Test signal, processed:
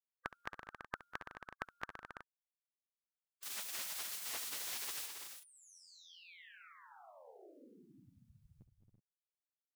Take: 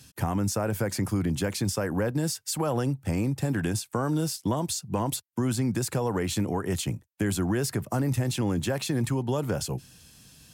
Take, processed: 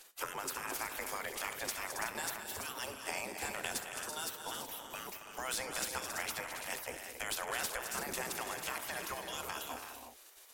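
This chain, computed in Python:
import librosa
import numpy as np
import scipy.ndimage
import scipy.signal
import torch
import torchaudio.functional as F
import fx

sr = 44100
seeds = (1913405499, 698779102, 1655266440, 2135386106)

y = fx.spec_gate(x, sr, threshold_db=-20, keep='weak')
y = fx.echo_multitap(y, sr, ms=(68, 196, 215, 273, 334, 372), db=(-16.0, -19.0, -10.5, -10.5, -9.5, -14.0))
y = fx.slew_limit(y, sr, full_power_hz=140.0)
y = y * 10.0 ** (2.5 / 20.0)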